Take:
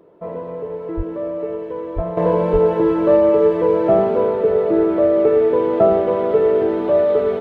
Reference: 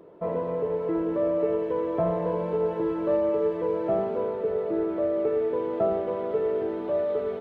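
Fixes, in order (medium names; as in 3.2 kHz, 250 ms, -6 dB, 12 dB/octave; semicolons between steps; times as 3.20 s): de-plosive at 0.96/1.95/2.52 s; trim 0 dB, from 2.17 s -11 dB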